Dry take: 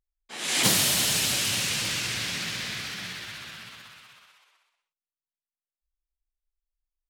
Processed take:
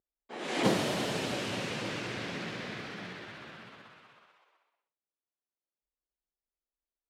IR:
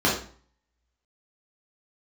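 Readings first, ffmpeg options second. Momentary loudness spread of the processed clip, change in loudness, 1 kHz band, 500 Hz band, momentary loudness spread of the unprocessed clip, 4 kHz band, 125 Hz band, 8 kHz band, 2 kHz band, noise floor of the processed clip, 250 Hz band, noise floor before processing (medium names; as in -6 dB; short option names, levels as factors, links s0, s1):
19 LU, -9.5 dB, -0.5 dB, +4.5 dB, 19 LU, -12.5 dB, -3.0 dB, -19.5 dB, -7.5 dB, under -85 dBFS, +2.0 dB, under -85 dBFS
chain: -af "bandpass=f=420:t=q:w=0.92:csg=0,volume=1.88"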